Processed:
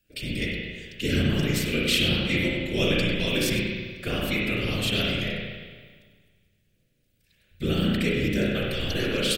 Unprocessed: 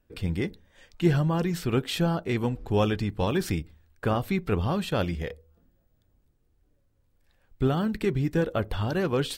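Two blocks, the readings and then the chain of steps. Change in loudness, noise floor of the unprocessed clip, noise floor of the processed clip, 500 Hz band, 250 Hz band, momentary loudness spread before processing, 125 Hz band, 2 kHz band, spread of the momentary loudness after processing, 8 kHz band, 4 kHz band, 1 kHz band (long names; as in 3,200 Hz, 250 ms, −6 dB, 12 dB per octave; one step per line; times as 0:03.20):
+2.0 dB, −69 dBFS, −69 dBFS, −0.5 dB, +1.0 dB, 7 LU, −1.0 dB, +9.0 dB, 10 LU, +8.0 dB, +11.5 dB, −7.0 dB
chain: drawn EQ curve 530 Hz 0 dB, 870 Hz −15 dB, 2,400 Hz +14 dB
random phases in short frames
on a send: single-tap delay 97 ms −13 dB
on the sum: spring reverb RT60 1.6 s, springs 34/58 ms, chirp 75 ms, DRR −4 dB
level −6 dB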